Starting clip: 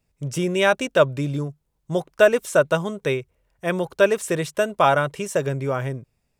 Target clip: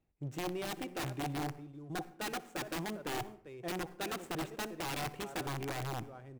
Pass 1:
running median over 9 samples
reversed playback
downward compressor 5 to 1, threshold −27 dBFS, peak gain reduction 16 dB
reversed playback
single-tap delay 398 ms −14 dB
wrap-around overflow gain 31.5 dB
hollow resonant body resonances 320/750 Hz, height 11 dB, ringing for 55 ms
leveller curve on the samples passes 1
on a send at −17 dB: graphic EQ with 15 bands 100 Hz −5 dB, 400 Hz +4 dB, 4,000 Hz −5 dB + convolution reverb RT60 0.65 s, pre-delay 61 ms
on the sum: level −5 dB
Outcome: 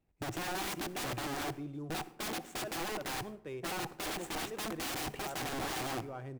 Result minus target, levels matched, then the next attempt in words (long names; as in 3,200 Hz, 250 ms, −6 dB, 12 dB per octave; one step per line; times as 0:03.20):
downward compressor: peak gain reduction −7.5 dB
running median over 9 samples
reversed playback
downward compressor 5 to 1, threshold −36.5 dBFS, peak gain reduction 23.5 dB
reversed playback
single-tap delay 398 ms −14 dB
wrap-around overflow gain 31.5 dB
hollow resonant body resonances 320/750 Hz, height 11 dB, ringing for 55 ms
leveller curve on the samples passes 1
on a send at −17 dB: graphic EQ with 15 bands 100 Hz −5 dB, 400 Hz +4 dB, 4,000 Hz −5 dB + convolution reverb RT60 0.65 s, pre-delay 61 ms
on the sum: level −5 dB